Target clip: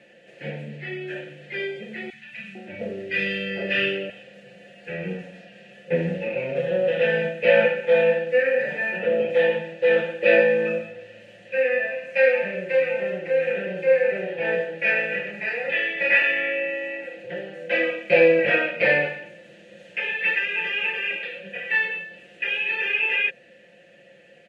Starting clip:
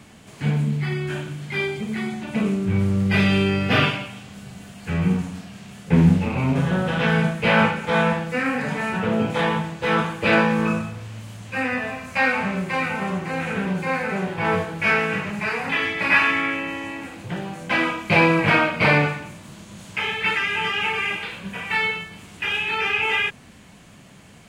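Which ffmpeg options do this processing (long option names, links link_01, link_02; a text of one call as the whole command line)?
ffmpeg -i in.wav -filter_complex "[0:a]asplit=3[link_01][link_02][link_03];[link_01]bandpass=frequency=530:width_type=q:width=8,volume=0dB[link_04];[link_02]bandpass=frequency=1840:width_type=q:width=8,volume=-6dB[link_05];[link_03]bandpass=frequency=2480:width_type=q:width=8,volume=-9dB[link_06];[link_04][link_05][link_06]amix=inputs=3:normalize=0,aecho=1:1:5.7:0.58,asettb=1/sr,asplit=3[link_07][link_08][link_09];[link_07]atrim=end=2.104[link_10];[link_08]atrim=start=2.1:end=4.1,asetpts=PTS-STARTPTS,afade=type=in:duration=0.004:curve=qsin,afade=type=out:start_time=1.996:duration=0.004:curve=qsin,acrossover=split=160|1200[link_11][link_12][link_13];[link_11]adelay=30[link_14];[link_12]adelay=450[link_15];[link_14][link_15][link_13]amix=inputs=3:normalize=0,atrim=end_sample=88200[link_16];[link_09]atrim=start=4.096[link_17];[link_10][link_16]acrossfade=duration=0.004:curve1=hsin:curve2=qsin[link_18];[link_18][link_17]acrossfade=duration=0.004:curve1=qsin:curve2=hsin,volume=8.5dB" out.wav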